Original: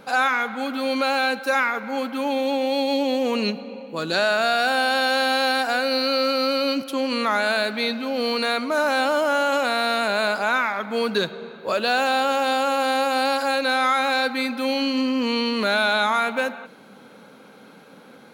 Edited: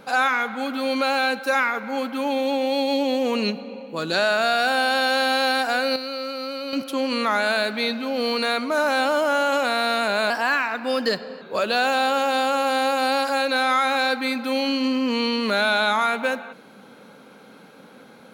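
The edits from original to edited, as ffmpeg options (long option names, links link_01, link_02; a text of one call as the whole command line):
ffmpeg -i in.wav -filter_complex "[0:a]asplit=5[link_01][link_02][link_03][link_04][link_05];[link_01]atrim=end=5.962[link_06];[link_02]atrim=start=5.958:end=6.732,asetpts=PTS-STARTPTS,volume=-8.5dB[link_07];[link_03]atrim=start=6.728:end=10.304[link_08];[link_04]atrim=start=10.3:end=11.55,asetpts=PTS-STARTPTS,asetrate=49392,aresample=44100[link_09];[link_05]atrim=start=11.546[link_10];[link_06][link_07]acrossfade=duration=0.004:curve1=hsin:curve2=hsin[link_11];[link_11][link_08]acrossfade=duration=0.004:curve1=hsin:curve2=hsin[link_12];[link_12][link_09]acrossfade=duration=0.004:curve1=hsin:curve2=hsin[link_13];[link_13][link_10]acrossfade=duration=0.004:curve1=hsin:curve2=hsin" out.wav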